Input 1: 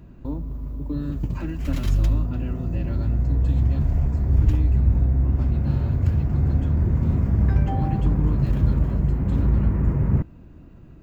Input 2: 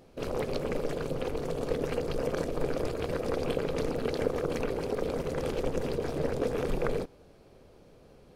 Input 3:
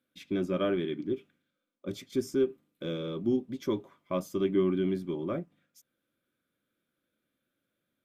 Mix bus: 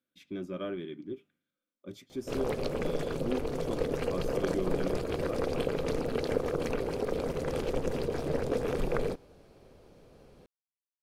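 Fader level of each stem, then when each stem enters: off, -0.5 dB, -7.5 dB; off, 2.10 s, 0.00 s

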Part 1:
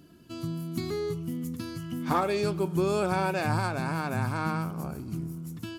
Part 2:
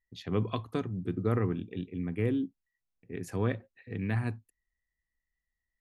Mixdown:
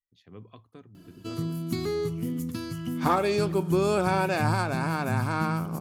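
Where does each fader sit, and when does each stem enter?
+2.5, -16.5 dB; 0.95, 0.00 s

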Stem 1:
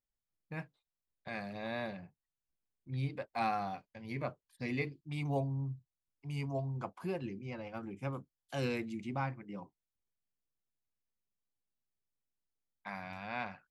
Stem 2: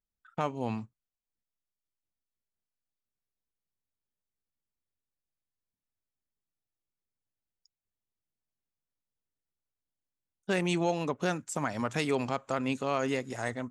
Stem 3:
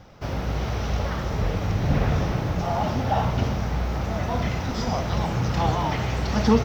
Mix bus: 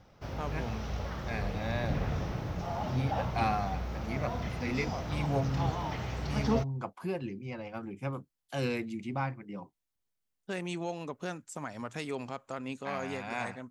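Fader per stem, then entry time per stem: +3.0, -7.5, -10.5 dB; 0.00, 0.00, 0.00 s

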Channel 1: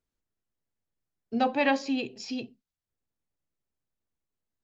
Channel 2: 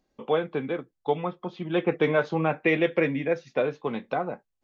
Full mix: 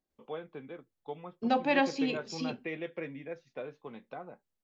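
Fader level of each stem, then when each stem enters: -2.0, -15.5 dB; 0.10, 0.00 s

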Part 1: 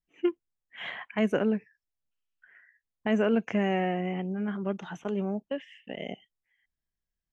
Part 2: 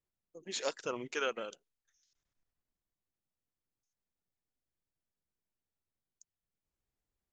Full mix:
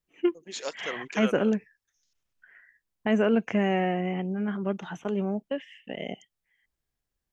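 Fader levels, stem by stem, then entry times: +2.0, +1.0 dB; 0.00, 0.00 s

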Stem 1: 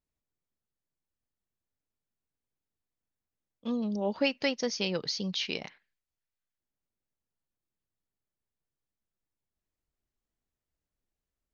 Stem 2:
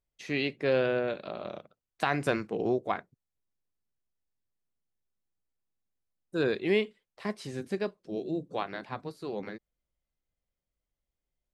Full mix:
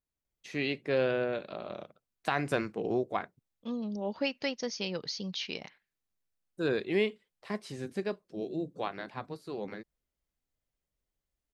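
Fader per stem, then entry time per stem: -4.0, -2.0 dB; 0.00, 0.25 s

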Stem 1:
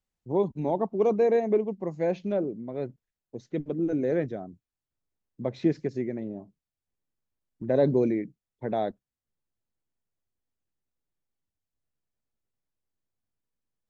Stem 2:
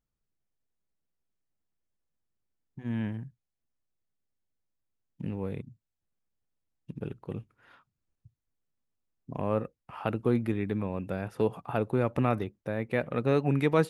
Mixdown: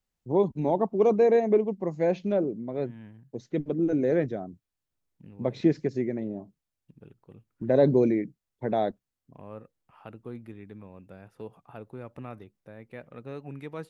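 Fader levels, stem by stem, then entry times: +2.0, -14.0 dB; 0.00, 0.00 s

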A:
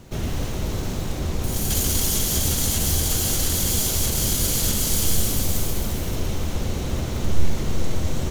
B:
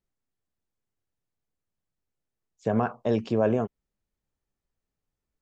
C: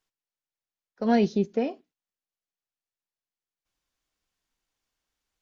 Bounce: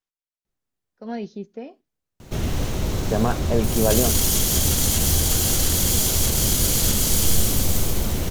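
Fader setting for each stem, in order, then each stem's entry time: +2.0, +2.5, -9.0 dB; 2.20, 0.45, 0.00 s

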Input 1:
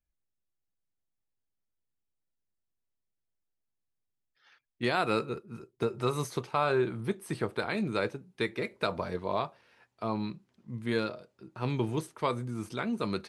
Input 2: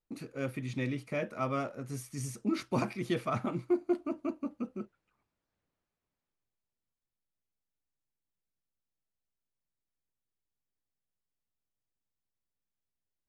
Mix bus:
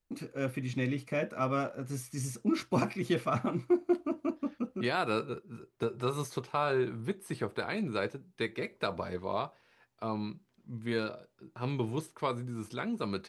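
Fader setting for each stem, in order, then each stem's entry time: -2.5, +2.0 dB; 0.00, 0.00 s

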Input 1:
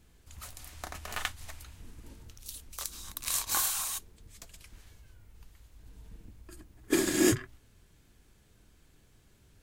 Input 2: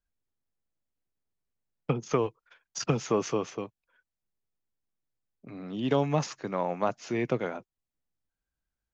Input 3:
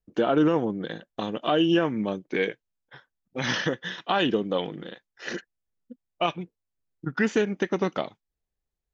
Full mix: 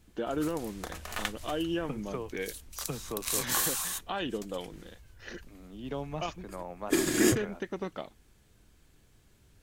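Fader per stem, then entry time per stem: 0.0, -11.0, -10.5 dB; 0.00, 0.00, 0.00 s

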